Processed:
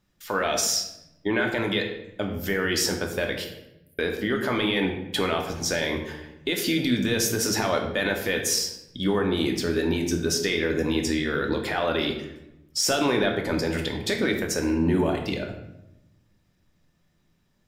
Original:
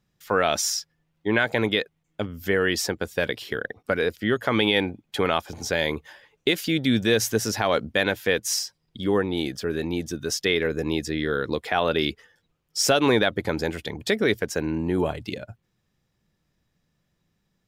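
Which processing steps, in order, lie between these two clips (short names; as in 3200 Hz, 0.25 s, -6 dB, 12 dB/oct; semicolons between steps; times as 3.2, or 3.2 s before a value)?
harmonic-percussive split percussive +4 dB; 3.44–3.99 inverse Chebyshev high-pass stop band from 2400 Hz, stop band 80 dB; limiter -15.5 dBFS, peak gain reduction 11 dB; on a send: reverb RT60 0.90 s, pre-delay 3 ms, DRR 2 dB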